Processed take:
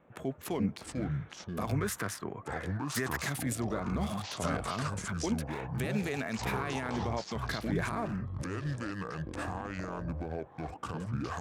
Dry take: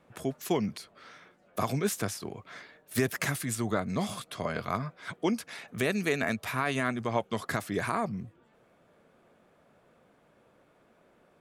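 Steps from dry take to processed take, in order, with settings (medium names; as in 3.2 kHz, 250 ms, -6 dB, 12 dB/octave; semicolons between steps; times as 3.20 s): local Wiener filter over 9 samples; peak limiter -24 dBFS, peak gain reduction 9 dB; time-frequency box 1.72–3.14 s, 920–2100 Hz +7 dB; ever faster or slower copies 237 ms, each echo -6 st, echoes 2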